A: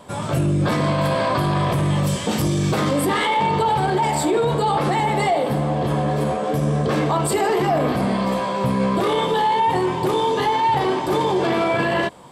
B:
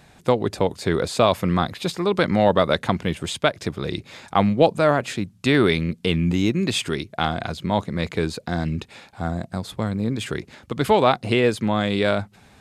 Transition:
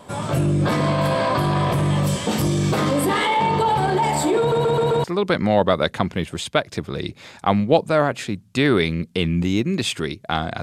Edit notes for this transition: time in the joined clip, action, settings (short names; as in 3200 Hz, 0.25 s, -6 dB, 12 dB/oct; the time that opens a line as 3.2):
A
4.39 stutter in place 0.13 s, 5 plays
5.04 switch to B from 1.93 s